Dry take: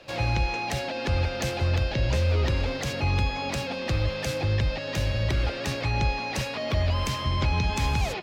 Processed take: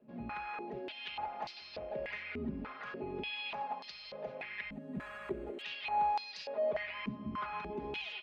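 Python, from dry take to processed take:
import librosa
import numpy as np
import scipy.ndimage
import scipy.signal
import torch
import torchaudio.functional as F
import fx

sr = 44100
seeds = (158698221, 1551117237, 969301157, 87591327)

y = fx.rattle_buzz(x, sr, strikes_db=-35.0, level_db=-27.0)
y = fx.air_absorb(y, sr, metres=200.0)
y = y + 0.82 * np.pad(y, (int(4.8 * sr / 1000.0), 0))[:len(y)]
y = fx.resample_bad(y, sr, factor=4, down='filtered', up='hold', at=(4.72, 5.62))
y = fx.filter_held_bandpass(y, sr, hz=3.4, low_hz=240.0, high_hz=4700.0)
y = y * librosa.db_to_amplitude(-1.0)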